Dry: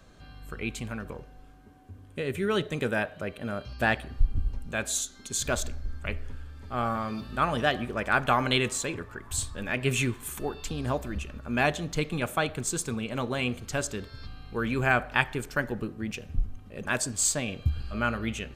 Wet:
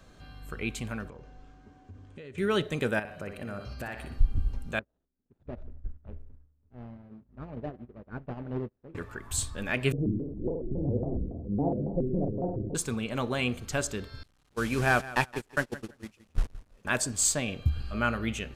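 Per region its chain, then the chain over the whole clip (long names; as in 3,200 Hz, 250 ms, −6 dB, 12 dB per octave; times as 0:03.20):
0:01.08–0:02.38: Chebyshev low-pass filter 6,700 Hz, order 3 + downward compressor, threshold −42 dBFS
0:02.99–0:04.18: parametric band 3,400 Hz −9.5 dB 0.22 octaves + downward compressor 10 to 1, threshold −33 dBFS + flutter between parallel walls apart 10.3 metres, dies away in 0.46 s
0:04.79–0:08.95: running median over 41 samples + head-to-tape spacing loss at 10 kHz 43 dB + expander for the loud parts 2.5 to 1, over −47 dBFS
0:09.92–0:12.75: Butterworth low-pass 560 Hz + flutter between parallel walls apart 9.8 metres, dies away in 1 s + pitch modulation by a square or saw wave square 3.6 Hz, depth 250 cents
0:14.23–0:16.85: linear delta modulator 64 kbit/s, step −33.5 dBFS + noise gate −30 dBFS, range −28 dB + repeating echo 168 ms, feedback 17%, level −17 dB
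whole clip: no processing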